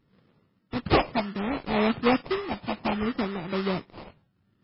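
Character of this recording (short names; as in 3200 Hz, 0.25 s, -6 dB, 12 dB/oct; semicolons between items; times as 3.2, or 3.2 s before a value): tremolo triangle 1.1 Hz, depth 50%; phasing stages 4, 0.65 Hz, lowest notch 430–1500 Hz; aliases and images of a low sample rate 1600 Hz, jitter 20%; MP3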